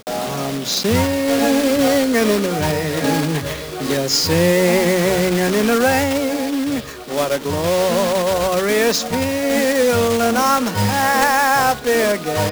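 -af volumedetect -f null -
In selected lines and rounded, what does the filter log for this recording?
mean_volume: -17.2 dB
max_volume: -4.2 dB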